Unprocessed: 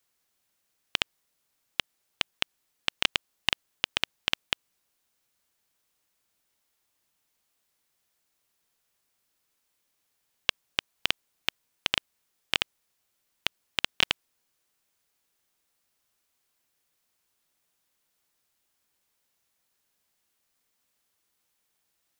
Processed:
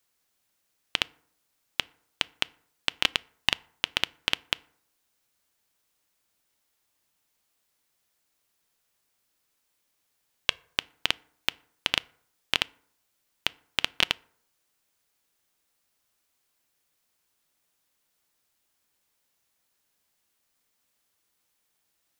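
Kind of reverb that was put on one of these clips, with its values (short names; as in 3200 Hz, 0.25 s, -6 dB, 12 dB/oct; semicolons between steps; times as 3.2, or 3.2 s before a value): FDN reverb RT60 0.63 s, low-frequency decay 1×, high-frequency decay 0.5×, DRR 20 dB; gain +1 dB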